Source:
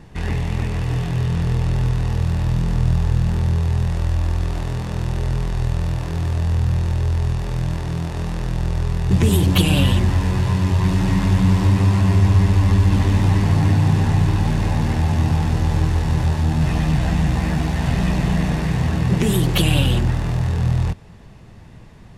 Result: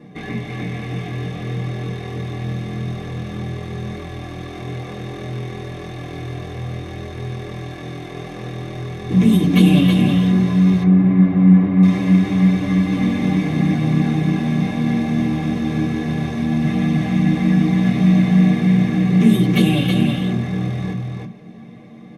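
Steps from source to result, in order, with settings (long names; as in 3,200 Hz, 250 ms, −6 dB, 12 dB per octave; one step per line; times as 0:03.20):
parametric band 110 Hz −12.5 dB 2.7 octaves
single-tap delay 321 ms −4.5 dB
dynamic equaliser 490 Hz, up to −6 dB, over −42 dBFS, Q 0.71
0:10.83–0:11.83: low-pass filter 1,500 Hz 12 dB per octave
convolution reverb RT60 0.20 s, pre-delay 3 ms, DRR −3.5 dB
level −9 dB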